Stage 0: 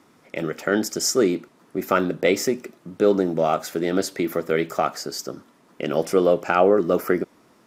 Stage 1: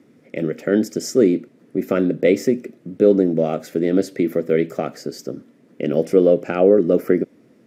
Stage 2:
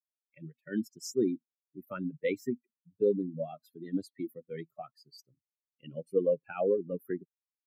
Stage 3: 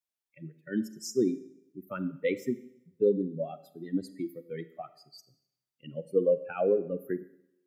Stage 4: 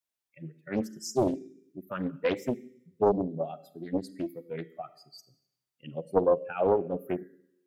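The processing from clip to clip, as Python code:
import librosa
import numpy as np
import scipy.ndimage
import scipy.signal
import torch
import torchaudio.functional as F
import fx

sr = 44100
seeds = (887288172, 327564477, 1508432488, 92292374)

y1 = fx.graphic_eq(x, sr, hz=(125, 250, 500, 1000, 2000), db=(11, 11, 11, -9, 7))
y1 = F.gain(torch.from_numpy(y1), -7.5).numpy()
y2 = fx.bin_expand(y1, sr, power=3.0)
y2 = F.gain(torch.from_numpy(y2), -8.5).numpy()
y3 = fx.rev_schroeder(y2, sr, rt60_s=0.78, comb_ms=32, drr_db=14.0)
y3 = F.gain(torch.from_numpy(y3), 2.0).numpy()
y4 = fx.doppler_dist(y3, sr, depth_ms=0.78)
y4 = F.gain(torch.from_numpy(y4), 1.5).numpy()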